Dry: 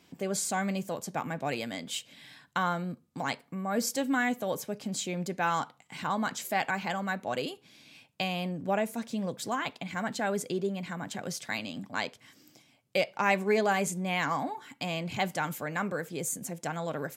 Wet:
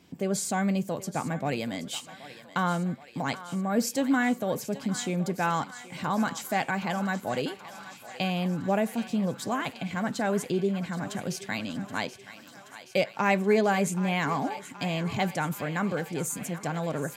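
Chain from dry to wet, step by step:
low-shelf EQ 380 Hz +7.5 dB
feedback echo with a high-pass in the loop 776 ms, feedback 77%, high-pass 600 Hz, level −13.5 dB

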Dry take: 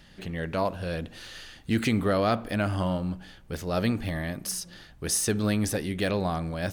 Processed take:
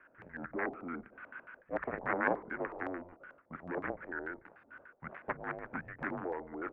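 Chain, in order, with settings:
harmonic generator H 3 −7 dB, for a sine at −11.5 dBFS
single-sideband voice off tune −270 Hz 480–2,500 Hz
auto-filter low-pass square 6.8 Hz 660–1,700 Hz
level +4 dB

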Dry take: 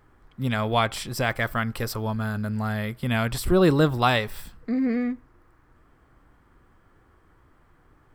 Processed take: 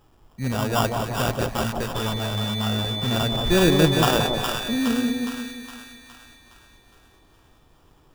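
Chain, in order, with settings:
sample-rate reduction 2,100 Hz, jitter 0%
0:01.94–0:04.33: steady tone 3,500 Hz −33 dBFS
echo with a time of its own for lows and highs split 970 Hz, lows 176 ms, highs 414 ms, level −4 dB

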